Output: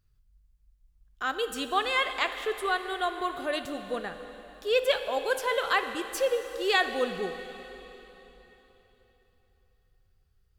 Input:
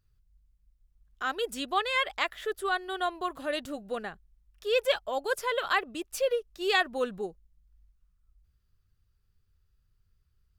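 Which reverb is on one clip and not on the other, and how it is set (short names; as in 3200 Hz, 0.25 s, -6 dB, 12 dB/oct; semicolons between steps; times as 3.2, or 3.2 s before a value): plate-style reverb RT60 3.7 s, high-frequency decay 1×, DRR 8 dB; gain +1 dB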